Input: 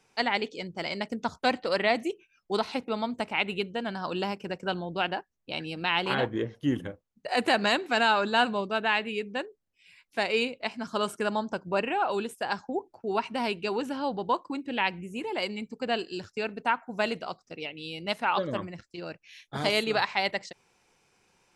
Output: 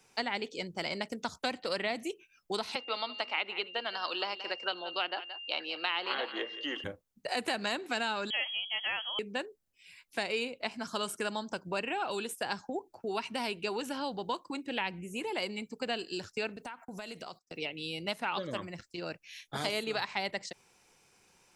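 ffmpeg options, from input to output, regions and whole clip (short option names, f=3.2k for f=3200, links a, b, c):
-filter_complex "[0:a]asettb=1/sr,asplit=3[a][b][c];[a]atrim=end=2.754[d];[b]atrim=start=2.75:end=6.84,asetpts=PTS-STARTPTS,afade=t=in:d=0.004:c=qsin,afade=t=out:st=4.086:d=0.004:c=qsin,highpass=f=390:w=0.5412,highpass=f=390:w=1.3066,equalizer=f=420:t=q:w=4:g=-6,equalizer=f=1.2k:t=q:w=4:g=7,equalizer=f=2k:t=q:w=4:g=5,equalizer=f=3k:t=q:w=4:g=7,equalizer=f=4.4k:t=q:w=4:g=9,lowpass=f=5.4k:w=0.5412,lowpass=f=5.4k:w=1.3066,aeval=exprs='val(0)+0.00631*sin(2*PI*2800*n/s)':c=same,aecho=1:1:175:0.15,atrim=end_sample=180369[e];[c]atrim=start=6.836[f];[d][e]acrossfade=d=0.004:c1=hsin:c2=qsin[g];[g][f]acrossfade=d=0.004:c1=qsin:c2=hsin,asettb=1/sr,asplit=3[h][i][j];[h]atrim=end=8.304[k];[i]atrim=start=8.3:end=9.19,asetpts=PTS-STARTPTS,afade=t=in:d=0.004:c=qsin,afade=t=out:st=0.886:d=0.004:c=qsin,highshelf=f=2.4k:g=-12,lowpass=f=3k:t=q:w=0.5098,lowpass=f=3k:t=q:w=0.6013,lowpass=f=3k:t=q:w=0.9,lowpass=f=3k:t=q:w=2.563,afreqshift=-3500[l];[j]atrim=start=9.186[m];[k][l]acrossfade=d=0.004:c1=hsin:c2=qsin[n];[n][m]acrossfade=d=0.004:c1=qsin:c2=hsin,asettb=1/sr,asplit=3[o][p][q];[o]atrim=end=16.564[r];[p]atrim=start=16.56:end=17.58,asetpts=PTS-STARTPTS,afade=t=in:d=0.004:c=qsin,afade=t=out:st=1.016:d=0.004:c=qsin,agate=range=-22dB:threshold=-52dB:ratio=16:release=100:detection=peak,highshelf=f=4.4k:g=8.5,acompressor=threshold=-39dB:ratio=12:attack=3.2:release=140:knee=1:detection=peak[s];[q]atrim=start=17.576[t];[r][s]acrossfade=d=0.004:c1=hsin:c2=qsin[u];[u][t]acrossfade=d=0.004:c1=qsin:c2=hsin,highshelf=f=6k:g=8.5,acrossover=split=380|1800[v][w][x];[v]acompressor=threshold=-42dB:ratio=4[y];[w]acompressor=threshold=-36dB:ratio=4[z];[x]acompressor=threshold=-36dB:ratio=4[aa];[y][z][aa]amix=inputs=3:normalize=0"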